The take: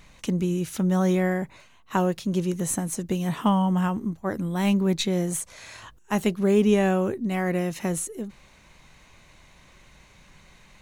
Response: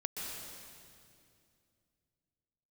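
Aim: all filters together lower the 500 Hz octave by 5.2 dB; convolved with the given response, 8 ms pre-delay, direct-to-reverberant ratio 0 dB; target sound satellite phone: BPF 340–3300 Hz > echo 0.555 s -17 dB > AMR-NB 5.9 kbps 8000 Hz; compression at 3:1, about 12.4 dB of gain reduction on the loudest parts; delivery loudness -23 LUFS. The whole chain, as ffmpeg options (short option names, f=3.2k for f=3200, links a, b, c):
-filter_complex "[0:a]equalizer=f=500:t=o:g=-5,acompressor=threshold=-35dB:ratio=3,asplit=2[a][b];[1:a]atrim=start_sample=2205,adelay=8[c];[b][c]afir=irnorm=-1:irlink=0,volume=-2dB[d];[a][d]amix=inputs=2:normalize=0,highpass=340,lowpass=3.3k,aecho=1:1:555:0.141,volume=18dB" -ar 8000 -c:a libopencore_amrnb -b:a 5900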